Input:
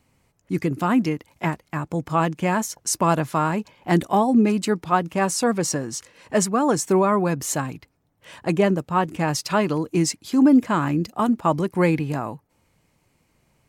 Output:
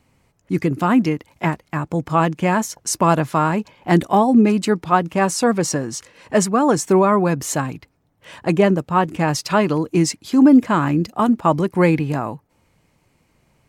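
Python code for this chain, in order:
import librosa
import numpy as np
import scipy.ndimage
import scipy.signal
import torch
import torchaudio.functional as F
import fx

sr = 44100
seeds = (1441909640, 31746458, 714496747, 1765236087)

y = fx.high_shelf(x, sr, hz=5800.0, db=-4.5)
y = y * 10.0 ** (4.0 / 20.0)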